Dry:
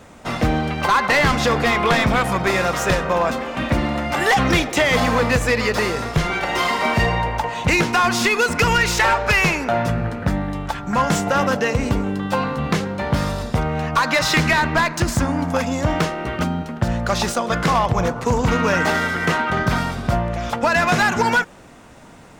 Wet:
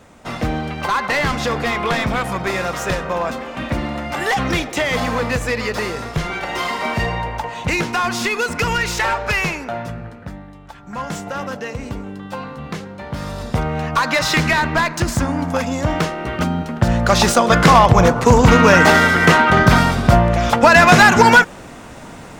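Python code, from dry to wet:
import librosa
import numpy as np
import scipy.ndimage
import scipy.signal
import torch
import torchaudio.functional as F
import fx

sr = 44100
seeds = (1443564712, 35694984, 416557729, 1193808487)

y = fx.gain(x, sr, db=fx.line((9.37, -2.5), (10.6, -15.0), (11.04, -8.0), (13.12, -8.0), (13.53, 0.5), (16.2, 0.5), (17.39, 8.0)))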